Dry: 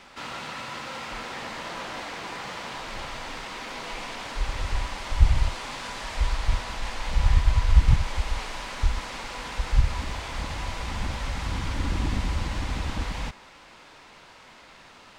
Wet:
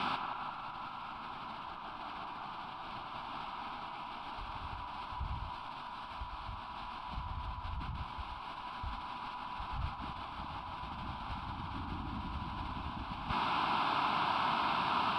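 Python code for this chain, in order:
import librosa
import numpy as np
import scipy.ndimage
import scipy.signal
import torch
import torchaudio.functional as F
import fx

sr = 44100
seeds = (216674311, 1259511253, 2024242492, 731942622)

p1 = fx.weighting(x, sr, curve='A')
p2 = 10.0 ** (-33.5 / 20.0) * (np.abs((p1 / 10.0 ** (-33.5 / 20.0) + 3.0) % 4.0 - 2.0) - 1.0)
p3 = p1 + F.gain(torch.from_numpy(p2), -10.0).numpy()
p4 = fx.fixed_phaser(p3, sr, hz=1900.0, stages=6)
p5 = 10.0 ** (-25.5 / 20.0) * np.tanh(p4 / 10.0 ** (-25.5 / 20.0))
p6 = fx.over_compress(p5, sr, threshold_db=-46.0, ratio=-0.5)
p7 = fx.tilt_eq(p6, sr, slope=-4.0)
p8 = p7 + fx.echo_banded(p7, sr, ms=174, feedback_pct=79, hz=870.0, wet_db=-4.0, dry=0)
y = F.gain(torch.from_numpy(p8), 7.5).numpy()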